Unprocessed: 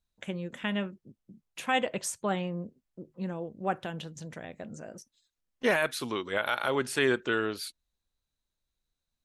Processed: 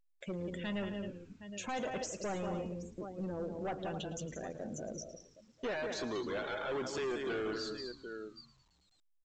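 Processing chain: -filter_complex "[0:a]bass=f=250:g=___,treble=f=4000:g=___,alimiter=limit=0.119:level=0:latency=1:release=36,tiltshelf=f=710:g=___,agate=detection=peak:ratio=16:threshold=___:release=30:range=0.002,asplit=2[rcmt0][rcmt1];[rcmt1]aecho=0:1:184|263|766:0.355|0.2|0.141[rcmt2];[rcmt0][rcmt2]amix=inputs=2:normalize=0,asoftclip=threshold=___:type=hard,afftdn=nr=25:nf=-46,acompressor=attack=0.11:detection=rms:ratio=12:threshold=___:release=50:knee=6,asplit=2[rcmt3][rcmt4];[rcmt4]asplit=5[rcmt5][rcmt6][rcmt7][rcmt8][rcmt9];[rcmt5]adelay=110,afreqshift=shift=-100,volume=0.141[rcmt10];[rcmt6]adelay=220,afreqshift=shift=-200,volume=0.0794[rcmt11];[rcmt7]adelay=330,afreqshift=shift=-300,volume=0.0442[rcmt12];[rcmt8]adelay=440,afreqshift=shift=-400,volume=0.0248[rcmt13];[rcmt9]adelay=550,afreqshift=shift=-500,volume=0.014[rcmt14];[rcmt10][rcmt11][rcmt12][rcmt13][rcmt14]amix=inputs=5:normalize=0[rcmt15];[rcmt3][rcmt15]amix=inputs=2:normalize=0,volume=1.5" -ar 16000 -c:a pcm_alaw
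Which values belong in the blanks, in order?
-10, 12, 5, 0.00158, 0.0251, 0.0141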